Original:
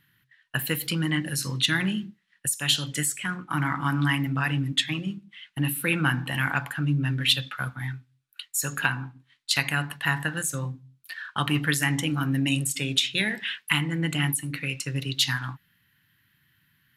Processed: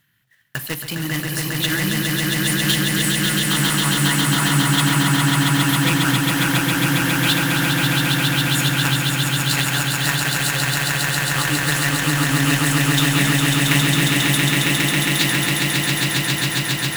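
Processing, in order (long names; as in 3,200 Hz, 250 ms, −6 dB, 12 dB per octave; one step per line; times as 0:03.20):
one scale factor per block 3 bits
echo that builds up and dies away 136 ms, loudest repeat 8, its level −3.5 dB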